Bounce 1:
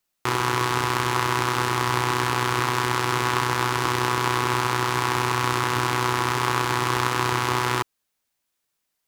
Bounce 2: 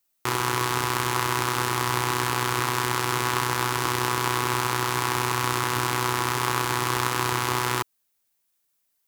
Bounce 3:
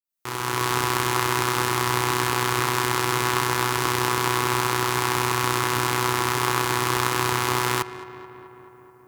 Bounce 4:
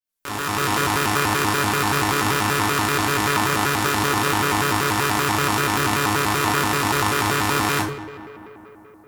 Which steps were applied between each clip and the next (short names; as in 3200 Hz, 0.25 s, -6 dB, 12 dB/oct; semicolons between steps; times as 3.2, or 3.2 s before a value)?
high shelf 8300 Hz +10.5 dB; gain -2.5 dB
opening faded in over 0.70 s; darkening echo 0.216 s, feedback 74%, low-pass 2700 Hz, level -14.5 dB; gain +2 dB
shoebox room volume 400 m³, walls furnished, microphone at 2.1 m; shaped vibrato square 5.2 Hz, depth 250 cents